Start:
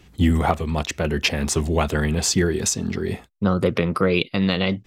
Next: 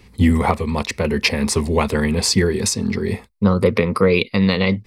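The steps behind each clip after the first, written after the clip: rippled EQ curve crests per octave 0.91, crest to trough 8 dB; trim +2.5 dB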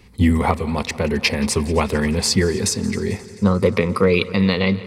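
multi-head delay 88 ms, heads second and third, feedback 66%, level -20.5 dB; trim -1 dB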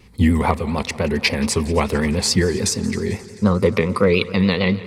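vibrato 7 Hz 77 cents

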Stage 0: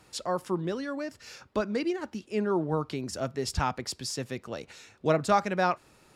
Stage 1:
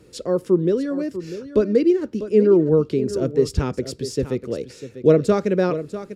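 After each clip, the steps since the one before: resonant low shelf 600 Hz +9 dB, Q 3; delay 646 ms -12.5 dB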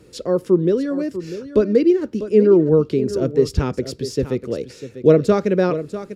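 dynamic bell 8.3 kHz, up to -5 dB, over -53 dBFS, Q 2.1; trim +2 dB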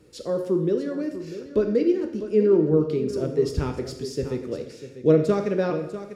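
plate-style reverb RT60 0.84 s, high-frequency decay 0.95×, DRR 4.5 dB; trim -7 dB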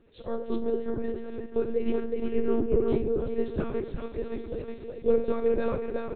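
on a send: delay 366 ms -3.5 dB; on the sum: monotone LPC vocoder at 8 kHz 230 Hz; trim -5.5 dB

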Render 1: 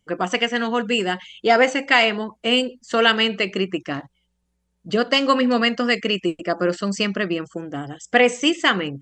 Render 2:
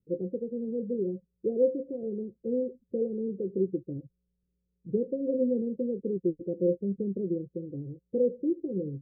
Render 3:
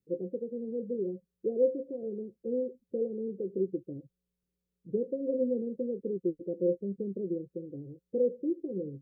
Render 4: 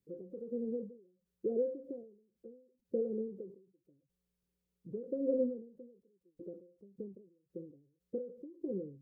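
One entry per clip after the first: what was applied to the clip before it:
rippled Chebyshev low-pass 540 Hz, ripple 6 dB; trim -3 dB
bass shelf 200 Hz -10.5 dB
endings held to a fixed fall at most 100 dB/s

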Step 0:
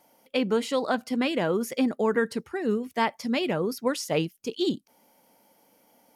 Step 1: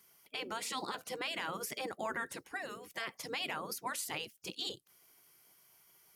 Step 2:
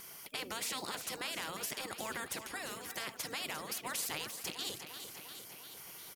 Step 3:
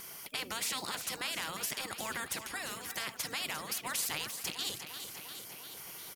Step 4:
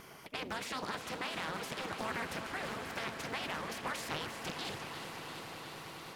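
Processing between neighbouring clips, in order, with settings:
spectral gate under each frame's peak -10 dB weak; treble shelf 6.1 kHz +5 dB; peak limiter -25 dBFS, peak gain reduction 10.5 dB; trim -2 dB
tremolo saw down 0.52 Hz, depth 35%; feedback delay 349 ms, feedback 53%, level -17 dB; spectrum-flattening compressor 2:1; trim +2.5 dB
dynamic bell 420 Hz, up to -5 dB, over -58 dBFS, Q 0.77; trim +3.5 dB
low-pass 1.2 kHz 6 dB/octave; echo with a slow build-up 101 ms, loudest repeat 8, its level -16.5 dB; loudspeaker Doppler distortion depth 0.6 ms; trim +4 dB

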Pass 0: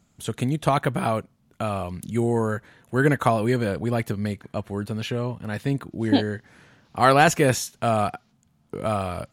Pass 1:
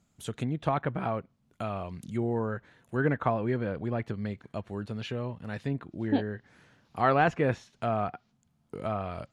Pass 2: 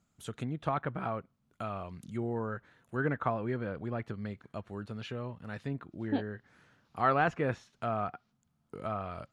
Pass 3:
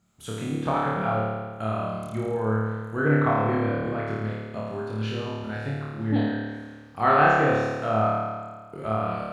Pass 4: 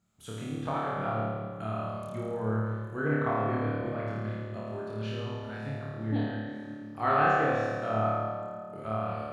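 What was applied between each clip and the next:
low-pass that closes with the level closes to 2.2 kHz, closed at -20 dBFS; trim -7 dB
peaking EQ 1.3 kHz +5 dB 0.5 oct; trim -5 dB
flutter echo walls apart 4.7 m, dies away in 1.5 s; trim +3.5 dB
reverberation RT60 2.2 s, pre-delay 61 ms, DRR 5.5 dB; trim -7 dB

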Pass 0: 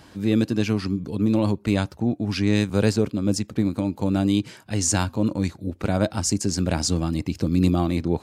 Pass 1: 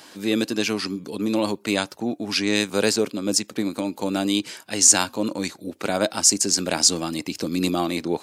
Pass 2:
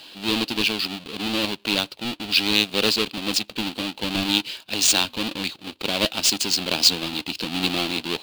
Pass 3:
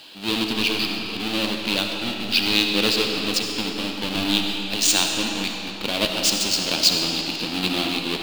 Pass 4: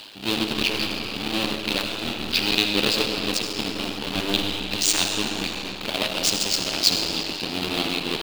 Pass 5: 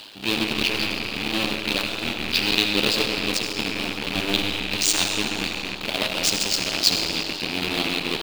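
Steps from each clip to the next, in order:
high-pass 300 Hz 12 dB/octave; treble shelf 2.6 kHz +8.5 dB; trim +2 dB
square wave that keeps the level; high-order bell 3.4 kHz +14 dB 1.1 oct; trim -8.5 dB
algorithmic reverb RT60 3.2 s, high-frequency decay 0.8×, pre-delay 25 ms, DRR 2 dB; trim -1 dB
cycle switcher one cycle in 3, muted; reverse; upward compressor, threshold -26 dBFS; reverse
rattle on loud lows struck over -36 dBFS, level -17 dBFS

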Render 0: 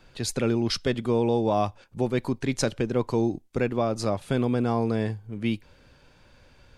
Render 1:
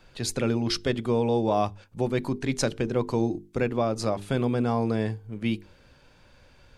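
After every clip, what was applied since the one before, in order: hum notches 50/100/150/200/250/300/350/400/450 Hz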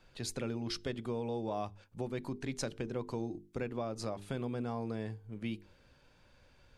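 compression 2:1, threshold -28 dBFS, peak gain reduction 5.5 dB; trim -8 dB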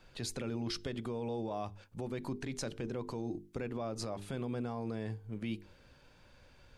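peak limiter -31.5 dBFS, peak gain reduction 7.5 dB; trim +3 dB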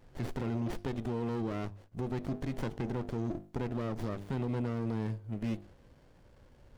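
sliding maximum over 33 samples; trim +3.5 dB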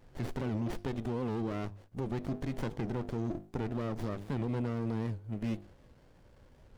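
warped record 78 rpm, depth 160 cents

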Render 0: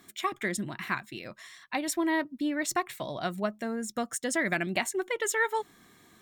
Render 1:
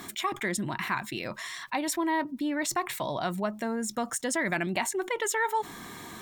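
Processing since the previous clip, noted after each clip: peaking EQ 930 Hz +7.5 dB 0.39 oct; level flattener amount 50%; trim -4 dB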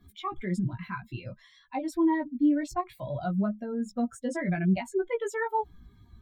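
expander on every frequency bin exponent 2; tilt EQ -4 dB/octave; chorus 0.58 Hz, delay 15 ms, depth 2.1 ms; trim +3 dB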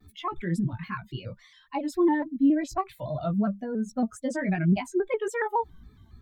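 vibrato with a chosen wave square 3.6 Hz, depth 100 cents; trim +2 dB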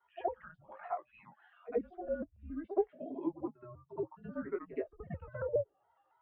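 mistuned SSB -350 Hz 360–3300 Hz; auto-wah 370–1100 Hz, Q 2.5, down, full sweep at -26.5 dBFS; pre-echo 72 ms -14 dB; trim +2.5 dB

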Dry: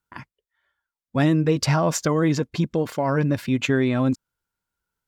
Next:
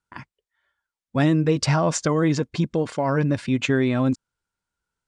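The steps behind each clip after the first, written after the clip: steep low-pass 10 kHz 96 dB/octave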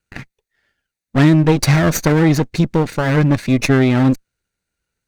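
comb filter that takes the minimum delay 0.47 ms; trim +7.5 dB

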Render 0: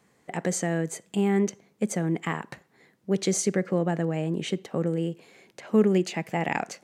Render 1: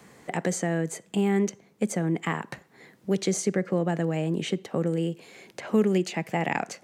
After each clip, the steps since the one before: three bands compressed up and down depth 40%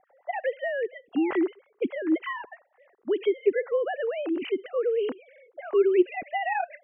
formants replaced by sine waves; level-controlled noise filter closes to 820 Hz, open at -22.5 dBFS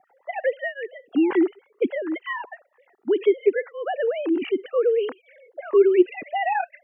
cancelling through-zero flanger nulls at 0.67 Hz, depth 2 ms; trim +6 dB

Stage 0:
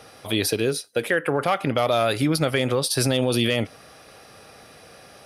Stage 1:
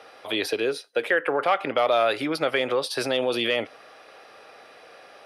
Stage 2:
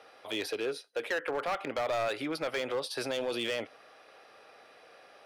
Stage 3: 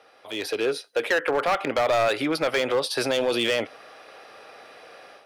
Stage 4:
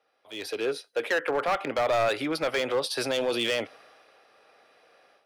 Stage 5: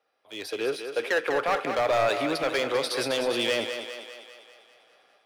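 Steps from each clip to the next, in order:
three-band isolator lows -21 dB, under 330 Hz, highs -15 dB, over 4.1 kHz; trim +1 dB
hard clipper -19.5 dBFS, distortion -12 dB; trim -7.5 dB
level rider gain up to 9.5 dB
three bands expanded up and down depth 40%; trim -3.5 dB
in parallel at -6 dB: crossover distortion -46 dBFS; on the sum: thinning echo 199 ms, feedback 58%, high-pass 280 Hz, level -7 dB; trim -3 dB

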